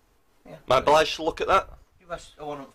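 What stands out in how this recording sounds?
noise floor -64 dBFS; spectral tilt -3.5 dB/oct

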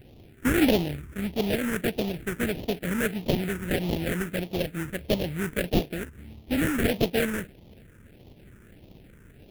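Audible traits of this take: aliases and images of a low sample rate 1100 Hz, jitter 20%; phasing stages 4, 1.6 Hz, lowest notch 710–1500 Hz

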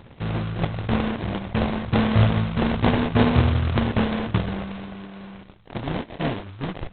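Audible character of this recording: a buzz of ramps at a fixed pitch in blocks of 64 samples; phasing stages 2, 1 Hz, lowest notch 520–1100 Hz; aliases and images of a low sample rate 1300 Hz, jitter 20%; G.726

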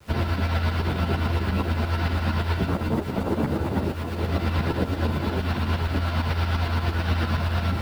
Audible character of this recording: a quantiser's noise floor 8-bit, dither none; tremolo saw up 8.7 Hz, depth 65%; a shimmering, thickened sound

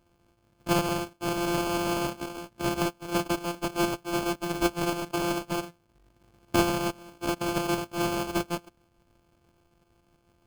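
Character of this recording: a buzz of ramps at a fixed pitch in blocks of 128 samples; tremolo saw up 6.2 Hz, depth 35%; aliases and images of a low sample rate 1900 Hz, jitter 0%

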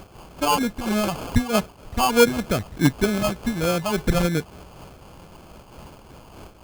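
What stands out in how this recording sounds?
a quantiser's noise floor 8-bit, dither triangular; phasing stages 12, 3.3 Hz, lowest notch 370–2800 Hz; aliases and images of a low sample rate 1900 Hz, jitter 0%; noise-modulated level

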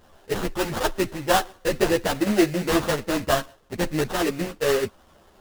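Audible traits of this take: aliases and images of a low sample rate 2300 Hz, jitter 20%; a shimmering, thickened sound

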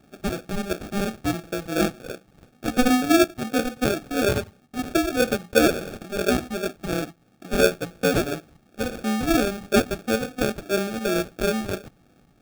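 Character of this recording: phasing stages 12, 2.9 Hz, lowest notch 370–2700 Hz; aliases and images of a low sample rate 1000 Hz, jitter 0%

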